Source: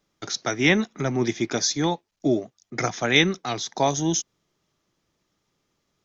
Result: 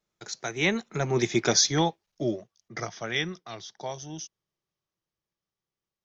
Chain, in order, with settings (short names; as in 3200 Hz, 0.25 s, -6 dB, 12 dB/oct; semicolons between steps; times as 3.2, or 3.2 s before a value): Doppler pass-by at 1.5, 17 m/s, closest 6.2 m; bell 270 Hz -14.5 dB 0.2 oct; gain +3 dB